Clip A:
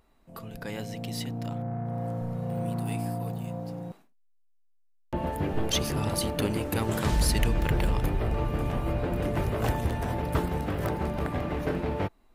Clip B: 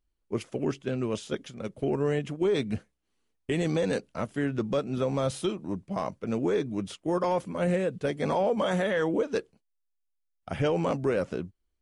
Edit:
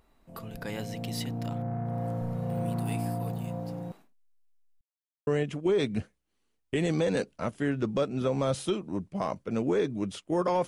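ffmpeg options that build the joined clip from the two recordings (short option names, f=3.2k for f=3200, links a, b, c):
-filter_complex "[0:a]apad=whole_dur=10.67,atrim=end=10.67,asplit=2[a][b];[a]atrim=end=4.81,asetpts=PTS-STARTPTS,afade=t=out:st=4.806:d=0.004:c=hsin[c];[b]atrim=start=4.81:end=5.27,asetpts=PTS-STARTPTS,volume=0[d];[1:a]atrim=start=2.03:end=7.43,asetpts=PTS-STARTPTS,afade=t=in:d=0.004:c=hsin[e];[c][d][e]concat=n=3:v=0:a=1"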